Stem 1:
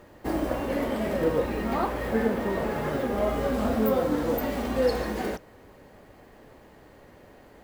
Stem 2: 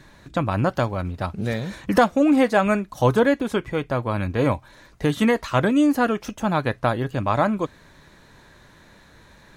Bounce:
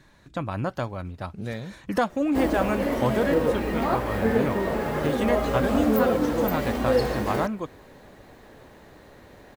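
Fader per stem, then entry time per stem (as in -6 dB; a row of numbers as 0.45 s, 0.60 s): +2.0 dB, -7.0 dB; 2.10 s, 0.00 s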